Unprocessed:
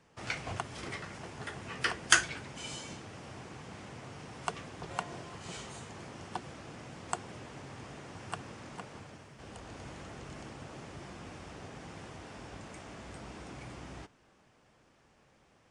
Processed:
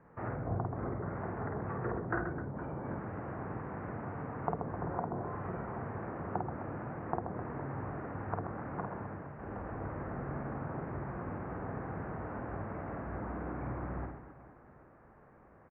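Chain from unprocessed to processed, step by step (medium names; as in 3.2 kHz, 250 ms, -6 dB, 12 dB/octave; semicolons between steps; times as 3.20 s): low-pass that closes with the level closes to 580 Hz, closed at -36.5 dBFS; inverse Chebyshev low-pass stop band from 3.3 kHz, stop band 40 dB; on a send: reverse bouncing-ball echo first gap 50 ms, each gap 1.6×, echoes 5; on the sum: trim +5 dB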